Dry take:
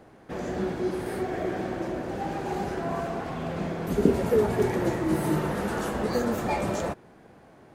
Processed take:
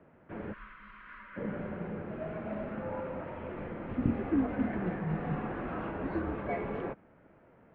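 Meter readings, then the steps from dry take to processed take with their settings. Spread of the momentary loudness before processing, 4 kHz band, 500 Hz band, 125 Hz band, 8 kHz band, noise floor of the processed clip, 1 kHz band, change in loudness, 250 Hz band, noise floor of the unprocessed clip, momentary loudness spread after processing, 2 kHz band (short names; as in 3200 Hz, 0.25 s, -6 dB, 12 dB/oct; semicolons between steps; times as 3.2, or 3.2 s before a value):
8 LU, under -15 dB, -11.0 dB, -6.5 dB, under -35 dB, -61 dBFS, -9.5 dB, -7.5 dB, -6.0 dB, -53 dBFS, 15 LU, -7.5 dB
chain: spectral gain 0.53–1.36, 210–1100 Hz -26 dB; mistuned SSB -160 Hz 260–2800 Hz; gain -6 dB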